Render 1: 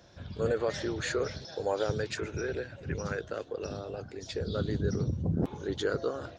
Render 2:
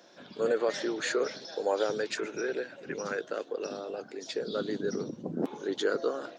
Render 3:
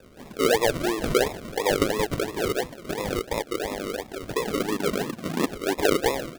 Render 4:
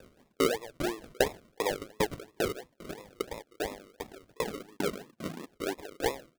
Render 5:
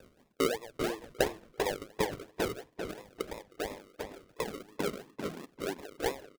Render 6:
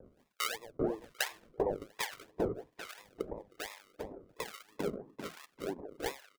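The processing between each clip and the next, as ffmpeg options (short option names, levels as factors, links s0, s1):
-af "highpass=f=230:w=0.5412,highpass=f=230:w=1.3066,volume=1.26"
-af "acrusher=samples=41:mix=1:aa=0.000001:lfo=1:lforange=24.6:lforate=2.9,volume=2.11"
-af "aeval=exprs='val(0)*pow(10,-36*if(lt(mod(2.5*n/s,1),2*abs(2.5)/1000),1-mod(2.5*n/s,1)/(2*abs(2.5)/1000),(mod(2.5*n/s,1)-2*abs(2.5)/1000)/(1-2*abs(2.5)/1000))/20)':c=same"
-filter_complex "[0:a]asplit=2[s0][s1];[s1]adelay=392,lowpass=f=3900:p=1,volume=0.501,asplit=2[s2][s3];[s3]adelay=392,lowpass=f=3900:p=1,volume=0.23,asplit=2[s4][s5];[s5]adelay=392,lowpass=f=3900:p=1,volume=0.23[s6];[s0][s2][s4][s6]amix=inputs=4:normalize=0,volume=0.75"
-filter_complex "[0:a]acrossover=split=950[s0][s1];[s0]aeval=exprs='val(0)*(1-1/2+1/2*cos(2*PI*1.2*n/s))':c=same[s2];[s1]aeval=exprs='val(0)*(1-1/2-1/2*cos(2*PI*1.2*n/s))':c=same[s3];[s2][s3]amix=inputs=2:normalize=0,volume=1.19"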